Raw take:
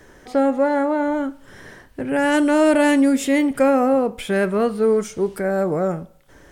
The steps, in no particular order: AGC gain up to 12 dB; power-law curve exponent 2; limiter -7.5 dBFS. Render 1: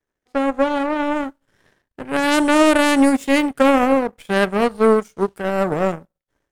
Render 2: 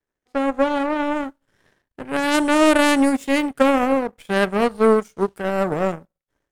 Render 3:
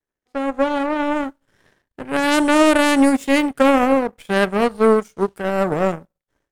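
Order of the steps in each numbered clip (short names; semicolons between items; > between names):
limiter > power-law curve > AGC; power-law curve > limiter > AGC; limiter > AGC > power-law curve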